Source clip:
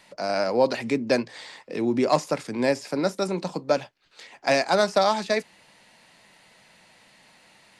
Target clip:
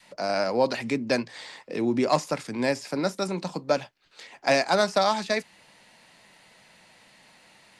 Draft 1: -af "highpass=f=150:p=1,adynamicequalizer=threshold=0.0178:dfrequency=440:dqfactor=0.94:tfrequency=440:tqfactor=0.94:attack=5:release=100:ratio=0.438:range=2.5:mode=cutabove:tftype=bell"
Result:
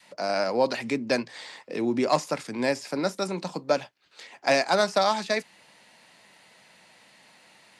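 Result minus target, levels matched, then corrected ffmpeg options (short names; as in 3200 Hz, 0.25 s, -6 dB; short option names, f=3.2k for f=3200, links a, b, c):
125 Hz band -2.5 dB
-af "adynamicequalizer=threshold=0.0178:dfrequency=440:dqfactor=0.94:tfrequency=440:tqfactor=0.94:attack=5:release=100:ratio=0.438:range=2.5:mode=cutabove:tftype=bell"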